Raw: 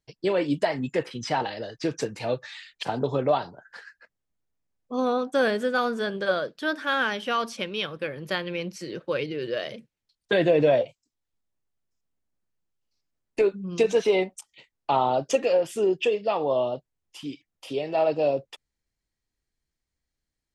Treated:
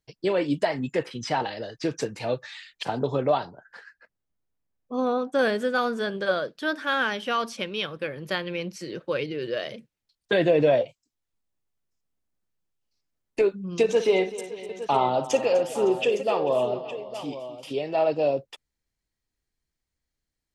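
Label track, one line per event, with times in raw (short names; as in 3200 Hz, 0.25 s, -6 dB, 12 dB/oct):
3.450000	5.390000	high shelf 2600 Hz -6.5 dB
13.830000	17.720000	tapped delay 56/252/439/560/861 ms -12.5/-15/-18.5/-19/-13 dB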